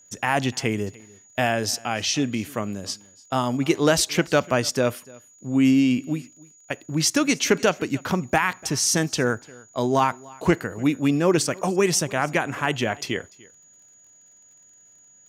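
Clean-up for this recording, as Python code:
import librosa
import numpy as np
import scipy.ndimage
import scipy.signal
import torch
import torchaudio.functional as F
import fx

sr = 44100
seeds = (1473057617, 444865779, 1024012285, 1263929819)

y = fx.fix_declick_ar(x, sr, threshold=6.5)
y = fx.notch(y, sr, hz=6800.0, q=30.0)
y = fx.fix_echo_inverse(y, sr, delay_ms=294, level_db=-23.5)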